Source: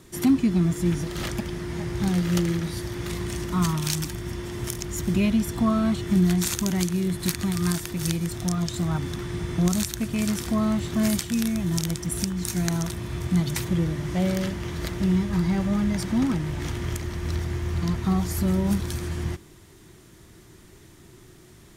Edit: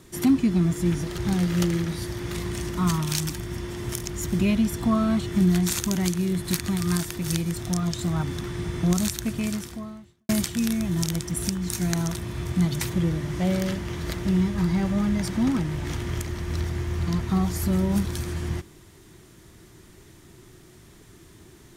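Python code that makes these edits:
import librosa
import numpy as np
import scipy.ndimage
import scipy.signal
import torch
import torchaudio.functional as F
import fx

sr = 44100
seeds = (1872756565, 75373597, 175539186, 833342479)

y = fx.edit(x, sr, fx.cut(start_s=1.18, length_s=0.75),
    fx.fade_out_span(start_s=10.1, length_s=0.94, curve='qua'), tone=tone)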